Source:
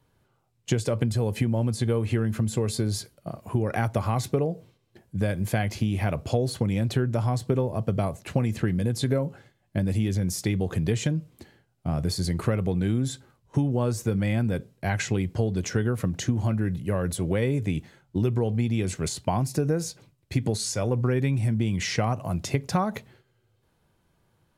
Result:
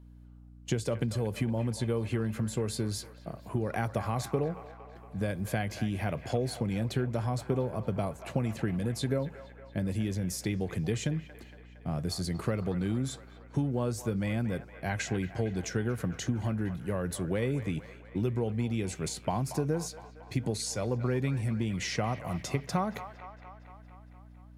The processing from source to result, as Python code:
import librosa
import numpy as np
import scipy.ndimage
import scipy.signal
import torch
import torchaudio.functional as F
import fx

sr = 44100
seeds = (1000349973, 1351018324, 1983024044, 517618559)

p1 = scipy.signal.sosfilt(scipy.signal.butter(2, 100.0, 'highpass', fs=sr, output='sos'), x)
p2 = fx.add_hum(p1, sr, base_hz=60, snr_db=19)
p3 = p2 + fx.echo_wet_bandpass(p2, sr, ms=231, feedback_pct=65, hz=1300.0, wet_db=-10.0, dry=0)
y = F.gain(torch.from_numpy(p3), -5.0).numpy()